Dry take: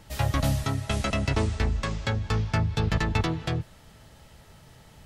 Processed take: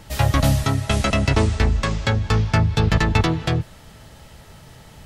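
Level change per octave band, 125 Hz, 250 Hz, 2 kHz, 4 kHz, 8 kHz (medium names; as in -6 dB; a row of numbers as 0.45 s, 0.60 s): +7.5 dB, +7.5 dB, +7.5 dB, +7.5 dB, +7.5 dB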